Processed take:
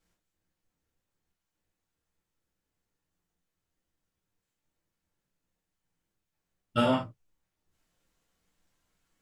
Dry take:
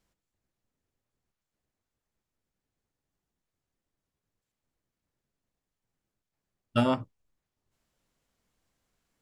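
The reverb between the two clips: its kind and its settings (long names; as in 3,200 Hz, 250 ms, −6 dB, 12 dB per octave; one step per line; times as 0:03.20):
reverb whose tail is shaped and stops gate 110 ms falling, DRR −4.5 dB
level −4 dB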